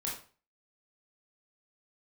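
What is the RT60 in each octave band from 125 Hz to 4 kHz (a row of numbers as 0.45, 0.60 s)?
0.45, 0.40, 0.40, 0.40, 0.35, 0.35 s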